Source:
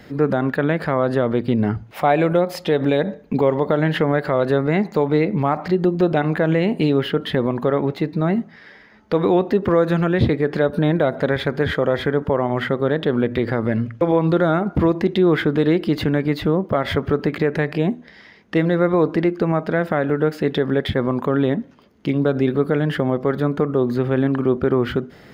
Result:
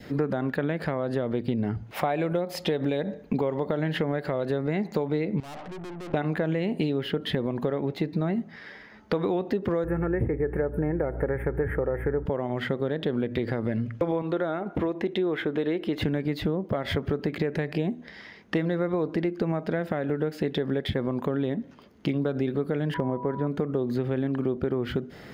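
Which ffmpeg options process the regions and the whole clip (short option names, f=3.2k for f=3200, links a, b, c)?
-filter_complex "[0:a]asettb=1/sr,asplit=3[a][b][c];[a]atrim=end=5.404[d];[b]atrim=start=5.4:end=6.14,asetpts=PTS-STARTPTS,afade=t=in:d=0.004:c=qsin,afade=t=out:st=0.736:d=0.004:c=qsin,lowpass=f=1.4k:w=0.5412,lowpass=f=1.4k:w=1.3066,lowshelf=f=180:g=-10.5,aeval=exprs='(tanh(70.8*val(0)+0.5)-tanh(0.5))/70.8':c=same[e];[c]atrim=start=6.136[f];[d][e]acrossfade=d=0.004:c1=hsin:c2=qsin[g];[g][f]acrossfade=d=0.004:c1=qsin:c2=hsin,asettb=1/sr,asplit=3[h][i][j];[h]atrim=end=9.844[k];[i]atrim=start=9.84:end=12.26,asetpts=PTS-STARTPTS,afade=t=in:d=0.004:c=qsin,afade=t=out:st=2.416:d=0.004:c=qsin,aeval=exprs='val(0)+0.0355*(sin(2*PI*60*n/s)+sin(2*PI*2*60*n/s)/2+sin(2*PI*3*60*n/s)/3+sin(2*PI*4*60*n/s)/4+sin(2*PI*5*60*n/s)/5)':c=same,asuperstop=centerf=4600:order=8:qfactor=0.63,aecho=1:1:2.3:0.45,atrim=end_sample=106722[l];[j]atrim=start=12.256[m];[k][l]acrossfade=d=0.004:c1=hsin:c2=qsin[n];[n][m]acrossfade=d=0.004:c1=qsin:c2=hsin,asettb=1/sr,asplit=3[o][p][q];[o]atrim=end=14.224[r];[p]atrim=start=14.22:end=16.02,asetpts=PTS-STARTPTS,afade=t=in:d=0.004:c=qsin,afade=t=out:st=1.796:d=0.004:c=qsin,bass=f=250:g=-11,treble=f=4k:g=-7,bandreject=f=4.7k:w=6[s];[q]atrim=start=16.016[t];[r][s]acrossfade=d=0.004:c1=hsin:c2=qsin[u];[u][t]acrossfade=d=0.004:c1=qsin:c2=hsin,asettb=1/sr,asplit=3[v][w][x];[v]atrim=end=22.944[y];[w]atrim=start=22.94:end=23.47,asetpts=PTS-STARTPTS,afade=t=in:d=0.004:c=qsin,afade=t=out:st=0.526:d=0.004:c=qsin,lowpass=1.7k,asoftclip=type=hard:threshold=-7.5dB,aeval=exprs='val(0)+0.0501*sin(2*PI*980*n/s)':c=same[z];[x]atrim=start=23.466[aa];[y][z]acrossfade=d=0.004:c1=hsin:c2=qsin[ab];[ab][aa]acrossfade=d=0.004:c1=qsin:c2=hsin,acompressor=threshold=-23dB:ratio=6,adynamicequalizer=threshold=0.00501:dfrequency=1200:dqfactor=1.5:tfrequency=1200:tqfactor=1.5:attack=5:release=100:ratio=0.375:range=3:mode=cutabove:tftype=bell"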